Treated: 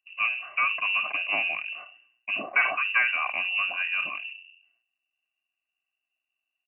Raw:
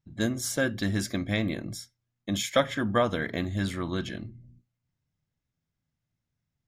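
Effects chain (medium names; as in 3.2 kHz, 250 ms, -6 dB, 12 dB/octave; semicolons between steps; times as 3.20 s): comb 2.4 ms, depth 65%; waveshaping leveller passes 1; frequency inversion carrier 2.8 kHz; high-pass 530 Hz 6 dB/octave; decay stretcher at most 85 dB/s; trim -2.5 dB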